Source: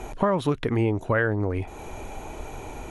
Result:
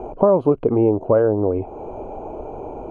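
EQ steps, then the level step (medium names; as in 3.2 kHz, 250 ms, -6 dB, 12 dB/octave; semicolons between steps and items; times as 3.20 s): boxcar filter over 24 samples; peaking EQ 540 Hz +14.5 dB 2.5 oct; -2.5 dB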